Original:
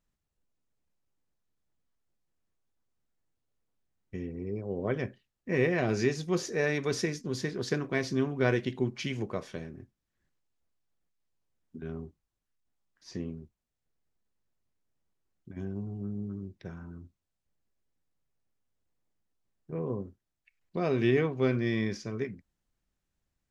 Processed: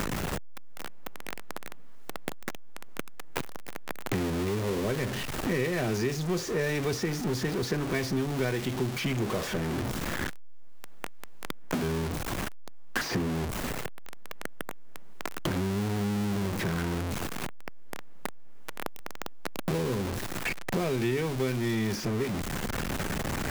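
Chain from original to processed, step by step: jump at every zero crossing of -28 dBFS; three bands compressed up and down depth 100%; trim -1 dB

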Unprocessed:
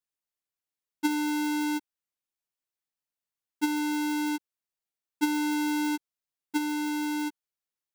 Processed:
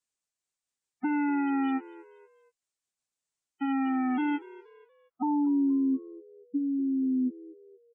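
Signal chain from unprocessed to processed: sawtooth pitch modulation -3 st, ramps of 1045 ms; low-pass sweep 7.9 kHz -> 210 Hz, 4.47–5.78 s; peak limiter -23 dBFS, peak gain reduction 8 dB; spectral gate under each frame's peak -20 dB strong; frequency-shifting echo 237 ms, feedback 40%, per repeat +71 Hz, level -20 dB; trim +1.5 dB

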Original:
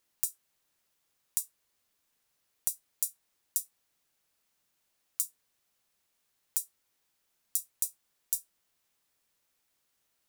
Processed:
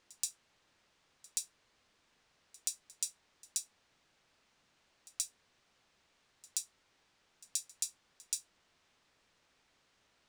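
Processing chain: distance through air 120 m; pre-echo 128 ms -22 dB; trim +11 dB

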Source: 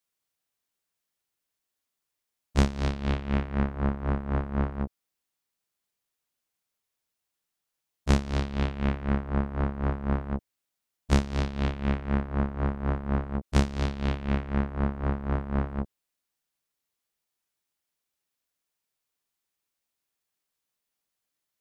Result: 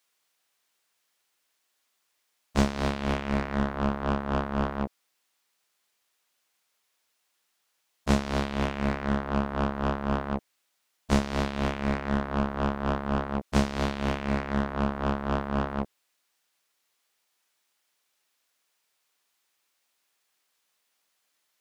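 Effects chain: overdrive pedal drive 18 dB, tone 6.4 kHz, clips at -10.5 dBFS

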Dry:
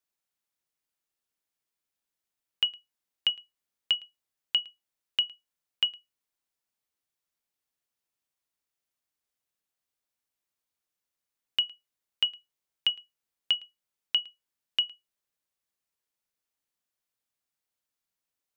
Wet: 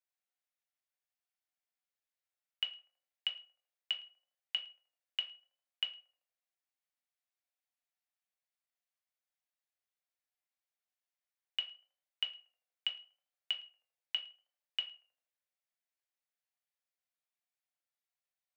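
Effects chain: rippled Chebyshev high-pass 510 Hz, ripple 6 dB; tape echo 79 ms, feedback 70%, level -18 dB, low-pass 1.2 kHz; on a send at -3 dB: reverberation RT60 0.35 s, pre-delay 7 ms; on the sum: trim -5.5 dB

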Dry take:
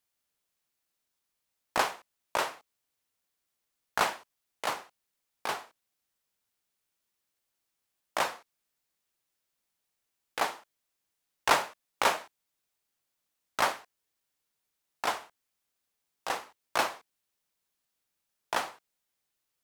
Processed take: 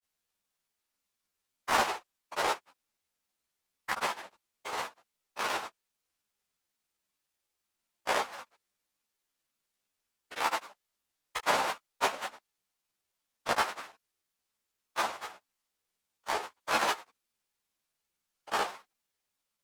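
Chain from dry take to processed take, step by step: every event in the spectrogram widened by 60 ms; granulator, spray 100 ms, pitch spread up and down by 3 st; three-phase chorus

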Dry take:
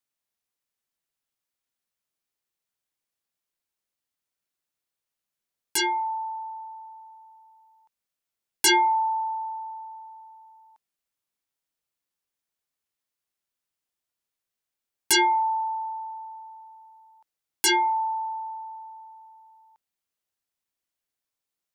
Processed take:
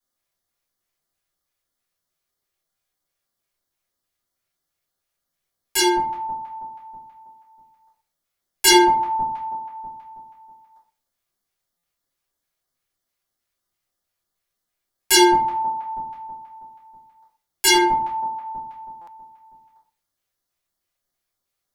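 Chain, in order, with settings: LFO notch square 3.1 Hz 250–2500 Hz; reverberation RT60 0.45 s, pre-delay 3 ms, DRR -9.5 dB; buffer glitch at 11.77/19.01 s, samples 256, times 10; trim -2 dB

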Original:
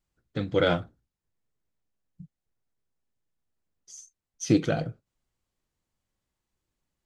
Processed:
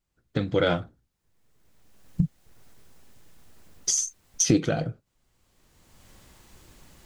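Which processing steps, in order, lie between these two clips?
recorder AGC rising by 22 dB/s

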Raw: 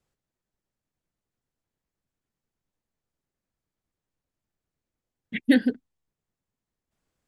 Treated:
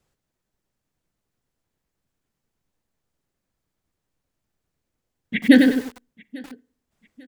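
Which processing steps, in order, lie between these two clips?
feedback delay 845 ms, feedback 31%, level -24 dB; reverberation RT60 0.50 s, pre-delay 37 ms, DRR 19.5 dB; bit-crushed delay 97 ms, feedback 35%, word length 7-bit, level -5 dB; trim +6.5 dB

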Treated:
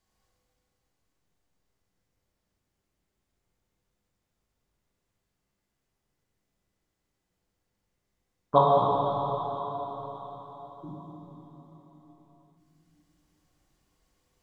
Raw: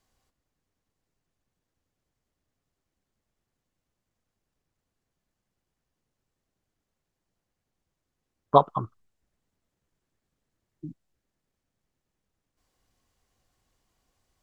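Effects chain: feedback comb 100 Hz, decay 1.9 s, mix 70%; plate-style reverb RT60 4.8 s, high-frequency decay 1×, DRR -5.5 dB; trim +5 dB

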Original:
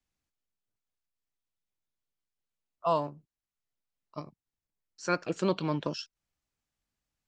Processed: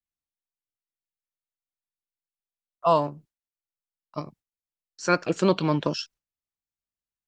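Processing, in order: gate with hold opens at -53 dBFS; trim +7 dB

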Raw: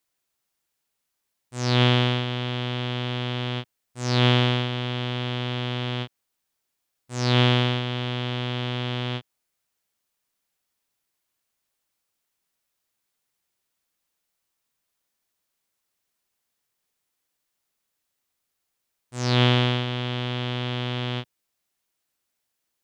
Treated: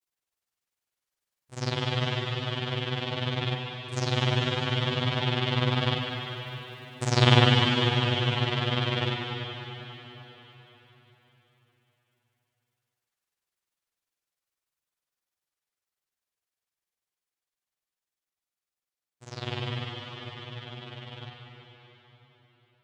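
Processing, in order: Doppler pass-by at 6.66 s, 5 m/s, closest 3.2 m; peaking EQ 230 Hz -6 dB 0.4 oct; in parallel at -0.5 dB: compressor with a negative ratio -41 dBFS, ratio -1; on the sum: granulator 63 ms, spray 16 ms, pitch spread up and down by 0 st; band-passed feedback delay 198 ms, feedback 68%, band-pass 1.7 kHz, level -7.5 dB; on a send at -3 dB: reverberation RT60 4.2 s, pre-delay 7 ms; on the sum: trim +6 dB

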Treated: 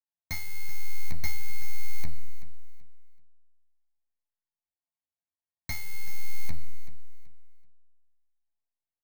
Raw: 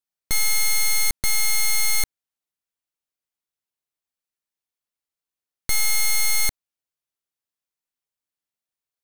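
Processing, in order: local Wiener filter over 15 samples; high-pass 46 Hz 24 dB/octave; peak limiter -18 dBFS, peak gain reduction 5.5 dB; waveshaping leveller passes 3; static phaser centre 2 kHz, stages 8; inharmonic resonator 79 Hz, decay 0.33 s, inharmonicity 0.03; saturation -37.5 dBFS, distortion -12 dB; feedback delay 381 ms, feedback 26%, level -14.5 dB; reverberation RT60 1.5 s, pre-delay 15 ms, DRR 13 dB; trim +11.5 dB

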